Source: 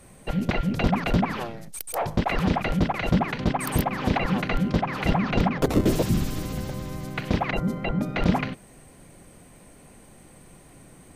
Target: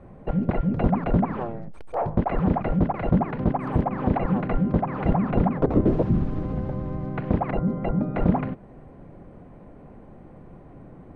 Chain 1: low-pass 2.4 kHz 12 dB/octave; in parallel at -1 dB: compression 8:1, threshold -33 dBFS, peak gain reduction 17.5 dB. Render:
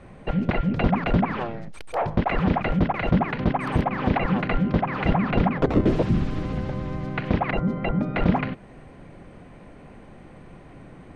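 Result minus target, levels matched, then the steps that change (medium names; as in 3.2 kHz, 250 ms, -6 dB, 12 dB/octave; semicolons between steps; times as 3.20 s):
2 kHz band +9.0 dB
change: low-pass 1 kHz 12 dB/octave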